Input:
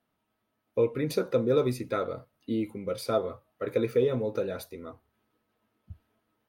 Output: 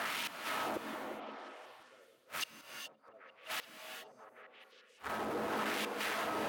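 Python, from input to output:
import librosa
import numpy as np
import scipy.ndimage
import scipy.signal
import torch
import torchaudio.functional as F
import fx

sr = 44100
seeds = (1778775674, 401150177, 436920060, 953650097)

p1 = x + 0.5 * 10.0 ** (-33.5 / 20.0) * np.sign(x)
p2 = fx.high_shelf(p1, sr, hz=8000.0, db=12.0)
p3 = 10.0 ** (-25.5 / 20.0) * np.tanh(p2 / 10.0 ** (-25.5 / 20.0))
p4 = p2 + (p3 * 10.0 ** (-8.5 / 20.0))
p5 = fx.filter_lfo_bandpass(p4, sr, shape='sine', hz=0.89, low_hz=570.0, high_hz=2900.0, q=1.1)
p6 = fx.gate_flip(p5, sr, shuts_db=-33.0, range_db=-41)
p7 = p6 + fx.echo_stepped(p6, sr, ms=173, hz=220.0, octaves=0.7, feedback_pct=70, wet_db=-1.5, dry=0)
p8 = fx.rev_gated(p7, sr, seeds[0], gate_ms=450, shape='rising', drr_db=6.0)
p9 = fx.band_widen(p8, sr, depth_pct=100, at=(2.61, 3.14))
y = p9 * 10.0 ** (5.0 / 20.0)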